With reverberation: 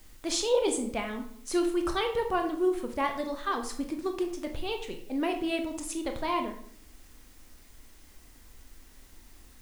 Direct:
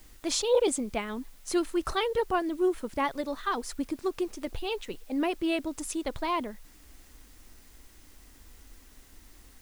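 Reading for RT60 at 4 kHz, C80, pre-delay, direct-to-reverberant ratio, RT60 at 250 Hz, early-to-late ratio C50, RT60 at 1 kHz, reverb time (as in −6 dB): 0.45 s, 12.5 dB, 19 ms, 4.5 dB, 0.70 s, 8.5 dB, 0.55 s, 0.60 s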